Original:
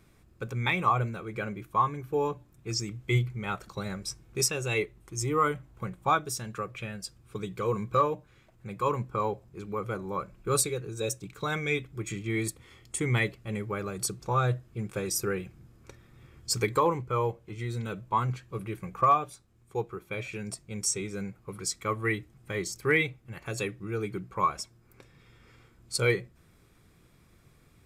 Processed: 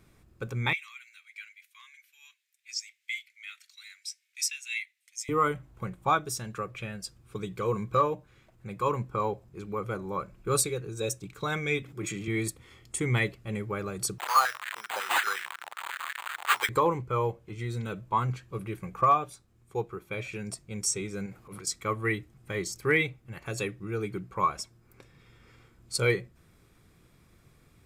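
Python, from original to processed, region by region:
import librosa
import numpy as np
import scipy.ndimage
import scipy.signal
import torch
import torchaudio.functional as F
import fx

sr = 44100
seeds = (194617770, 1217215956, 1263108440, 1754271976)

y = fx.chain(x, sr, fx.ellip_highpass(hz=2000.0, order=4, stop_db=70),
    fx.high_shelf(hz=6400.0, db=-4.5), at=(0.73, 5.29))
y = fx.chain(y, sr, fx.highpass(hz=140.0, slope=12),
    fx.sustainer(db_per_s=22.0), at=(11.82, 12.28))
y = fx.chain(y, sr, fx.crossing_spikes(level_db=-28.0),
    fx.resample_bad(factor=8, down='none', up='hold'),
    fx.filter_held_highpass(hz=11.0, low_hz=830.0, high_hz=1700.0), at=(14.18, 16.69))
y = fx.chain(y, sr, fx.low_shelf(hz=190.0, db=-7.0),
    fx.transient(attack_db=-11, sustain_db=8), at=(21.26, 21.67))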